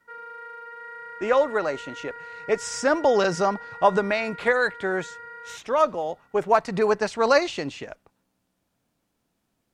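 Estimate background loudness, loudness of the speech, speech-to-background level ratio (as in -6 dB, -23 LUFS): -39.5 LUFS, -23.5 LUFS, 16.0 dB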